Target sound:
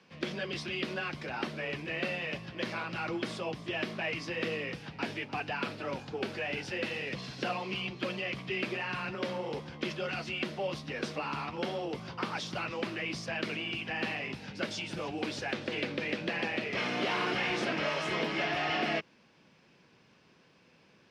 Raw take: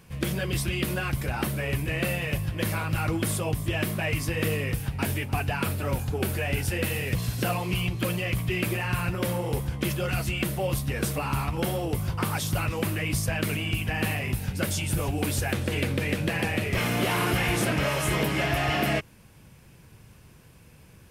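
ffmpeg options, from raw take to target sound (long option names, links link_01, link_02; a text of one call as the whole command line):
ffmpeg -i in.wav -filter_complex "[0:a]lowpass=frequency=5300:width_type=q:width=2.3,acrossover=split=180 4200:gain=0.0794 1 0.224[link_01][link_02][link_03];[link_01][link_02][link_03]amix=inputs=3:normalize=0,afreqshift=13,volume=-5dB" out.wav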